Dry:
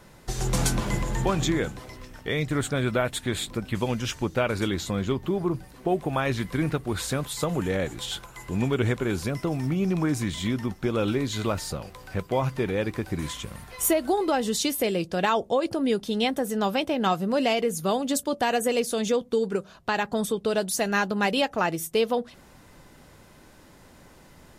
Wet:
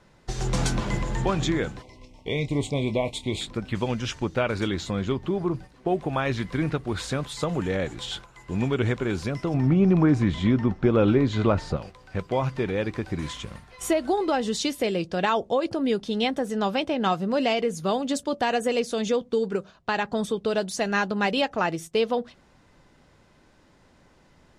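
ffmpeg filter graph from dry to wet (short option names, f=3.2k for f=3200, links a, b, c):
-filter_complex "[0:a]asettb=1/sr,asplit=3[a][b][c];[a]atrim=end=1.824[d];[b]atrim=start=1.82:end=3.41,asetpts=PTS-STARTPTS,afade=t=in:d=0.004:c=qsin,afade=t=out:st=1.586:d=0.004:c=qsin,asuperstop=centerf=1500:order=12:qfactor=1.6,asplit=2[e][f];[f]adelay=28,volume=-12dB[g];[e][g]amix=inputs=2:normalize=0,atrim=end_sample=70119[h];[c]atrim=start=3.406[i];[d][h]acrossfade=d=0.004:c1=hsin:c2=qsin[j];[j][i]acrossfade=d=0.004:c1=qsin:c2=hsin,asettb=1/sr,asplit=3[k][l][m];[k]atrim=end=9.544[n];[l]atrim=start=9.54:end=11.77,asetpts=PTS-STARTPTS,afade=t=in:d=0.004:c=qsin,afade=t=out:st=2.226:d=0.004:c=qsin,lowpass=f=1.3k:p=1,acontrast=61[o];[m]atrim=start=11.766[p];[n][o]acrossfade=d=0.004:c1=hsin:c2=qsin[q];[q][p]acrossfade=d=0.004:c1=qsin:c2=hsin,lowpass=6.3k,agate=range=-6dB:threshold=-39dB:ratio=16:detection=peak"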